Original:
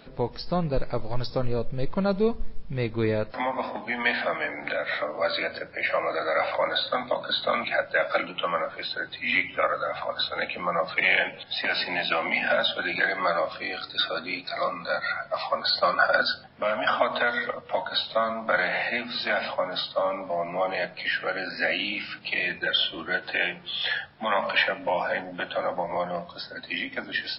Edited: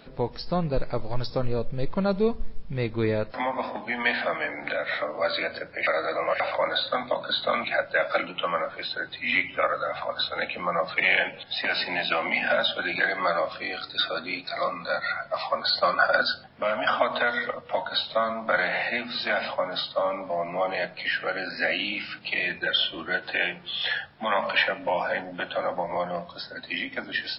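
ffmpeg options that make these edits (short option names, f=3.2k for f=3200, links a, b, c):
-filter_complex "[0:a]asplit=3[a][b][c];[a]atrim=end=5.872[d];[b]atrim=start=5.868:end=6.402,asetpts=PTS-STARTPTS,areverse[e];[c]atrim=start=6.398[f];[d][e]acrossfade=d=0.004:c1=hsin:c2=hsin[g];[g][f]acrossfade=d=0.004:c1=hsin:c2=hsin"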